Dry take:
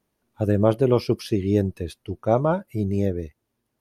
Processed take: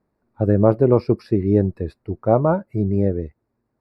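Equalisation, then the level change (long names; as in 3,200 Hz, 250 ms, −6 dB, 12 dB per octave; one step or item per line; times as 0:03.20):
moving average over 14 samples
+4.0 dB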